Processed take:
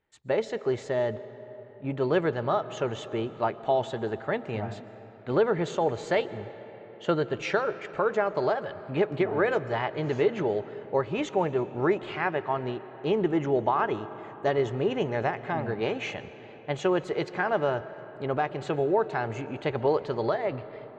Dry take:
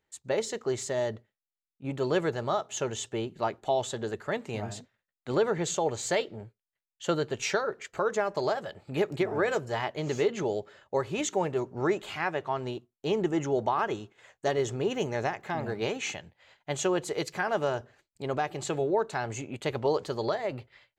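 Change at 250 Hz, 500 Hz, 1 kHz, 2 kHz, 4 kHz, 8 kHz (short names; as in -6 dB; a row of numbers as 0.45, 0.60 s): +2.5 dB, +2.5 dB, +2.5 dB, +2.0 dB, -2.5 dB, under -10 dB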